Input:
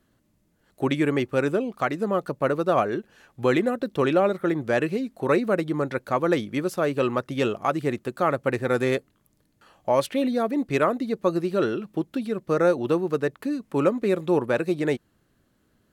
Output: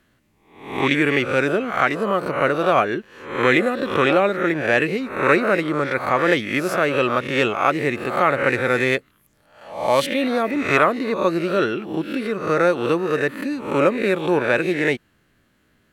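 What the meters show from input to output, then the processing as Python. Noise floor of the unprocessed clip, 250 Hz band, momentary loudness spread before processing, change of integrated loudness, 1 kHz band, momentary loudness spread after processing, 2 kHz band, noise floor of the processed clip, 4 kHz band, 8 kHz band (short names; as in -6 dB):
-68 dBFS, +2.5 dB, 6 LU, +5.0 dB, +6.5 dB, 6 LU, +11.5 dB, -62 dBFS, +9.0 dB, +5.0 dB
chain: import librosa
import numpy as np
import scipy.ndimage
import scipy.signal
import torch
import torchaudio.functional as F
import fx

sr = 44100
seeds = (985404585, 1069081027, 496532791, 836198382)

y = fx.spec_swells(x, sr, rise_s=0.58)
y = fx.peak_eq(y, sr, hz=2200.0, db=9.0, octaves=1.4)
y = y * librosa.db_to_amplitude(1.0)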